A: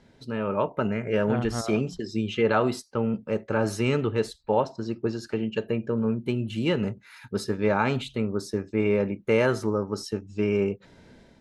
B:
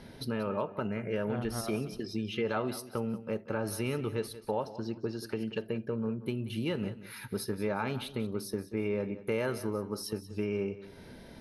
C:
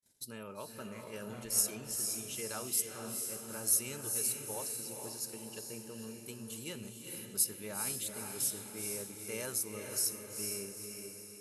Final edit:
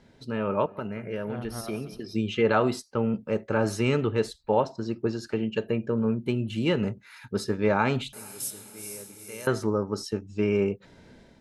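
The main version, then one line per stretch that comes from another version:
A
0.66–2.15 s: from B
8.13–9.47 s: from C

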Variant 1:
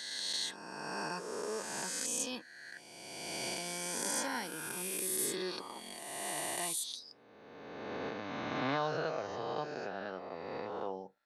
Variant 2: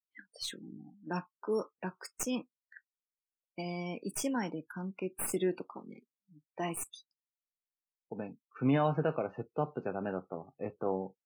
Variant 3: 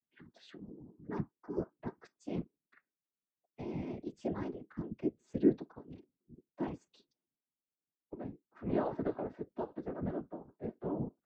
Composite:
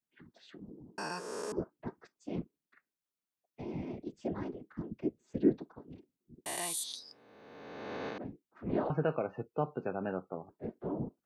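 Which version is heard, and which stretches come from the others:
3
0.98–1.52 s: from 1
6.46–8.18 s: from 1
8.90–10.49 s: from 2

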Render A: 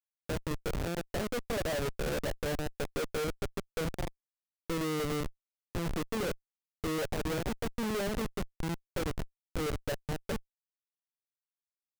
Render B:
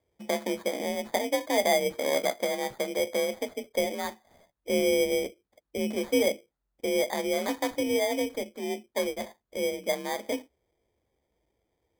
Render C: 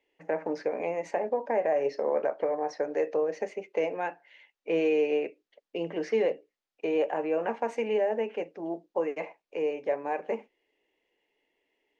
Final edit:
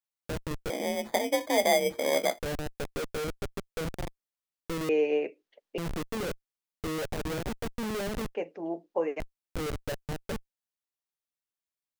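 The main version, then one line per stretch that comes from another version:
A
0.70–2.39 s: from B
4.89–5.78 s: from C
8.35–9.20 s: from C

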